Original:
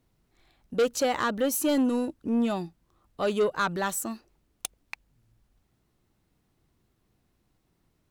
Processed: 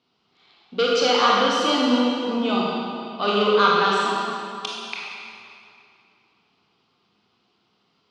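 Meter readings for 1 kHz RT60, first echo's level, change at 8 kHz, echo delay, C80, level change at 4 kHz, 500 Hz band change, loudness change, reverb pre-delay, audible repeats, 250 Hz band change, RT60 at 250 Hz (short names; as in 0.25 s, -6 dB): 2.6 s, none, -2.0 dB, none, -1.0 dB, +15.5 dB, +6.0 dB, +7.0 dB, 22 ms, none, +4.0 dB, 2.7 s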